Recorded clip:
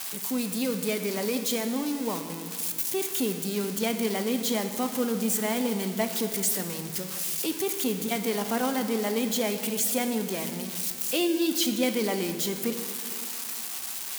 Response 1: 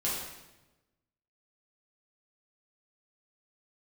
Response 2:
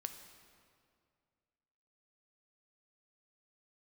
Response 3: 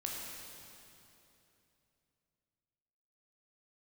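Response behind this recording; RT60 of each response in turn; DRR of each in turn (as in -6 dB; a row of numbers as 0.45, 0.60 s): 2; 1.0, 2.2, 3.0 s; -7.5, 7.0, -2.5 dB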